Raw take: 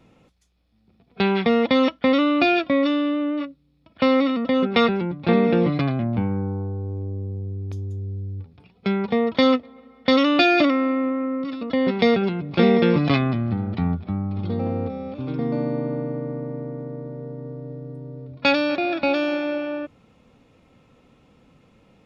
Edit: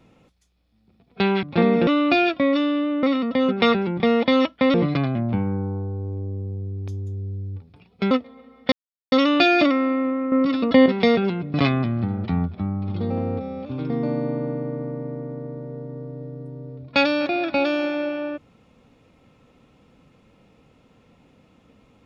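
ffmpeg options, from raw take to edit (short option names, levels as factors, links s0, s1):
-filter_complex "[0:a]asplit=11[s0][s1][s2][s3][s4][s5][s6][s7][s8][s9][s10];[s0]atrim=end=1.432[s11];[s1]atrim=start=5.138:end=5.582[s12];[s2]atrim=start=2.168:end=3.332[s13];[s3]atrim=start=4.168:end=5.142[s14];[s4]atrim=start=1.428:end=2.172[s15];[s5]atrim=start=5.578:end=8.952[s16];[s6]atrim=start=9.498:end=10.11,asetpts=PTS-STARTPTS,afade=t=out:st=0.608:d=0.004:c=hsin,apad=pad_dur=0.4[s17];[s7]atrim=start=10.11:end=11.312,asetpts=PTS-STARTPTS,afade=t=in:d=0.004:c=hsin[s18];[s8]atrim=start=11.308:end=11.852,asetpts=PTS-STARTPTS,volume=2.51[s19];[s9]atrim=start=11.848:end=12.532[s20];[s10]atrim=start=13.028[s21];[s11][s12]acrossfade=d=0.004:c1=hsin:c2=hsin[s22];[s22][s13]acrossfade=d=0.004:c1=hsin:c2=hsin[s23];[s23][s14]acrossfade=d=0.004:c1=hsin:c2=hsin[s24];[s24][s15]acrossfade=d=0.004:c1=hsin:c2=hsin[s25];[s25][s16]acrossfade=d=0.004:c1=hsin:c2=hsin[s26];[s17][s18]concat=n=2:v=0:a=1[s27];[s26][s27]acrossfade=d=0.004:c1=hsin:c2=hsin[s28];[s28][s19]acrossfade=d=0.004:c1=hsin:c2=hsin[s29];[s29][s20]acrossfade=d=0.004:c1=hsin:c2=hsin[s30];[s30][s21]acrossfade=d=0.004:c1=hsin:c2=hsin"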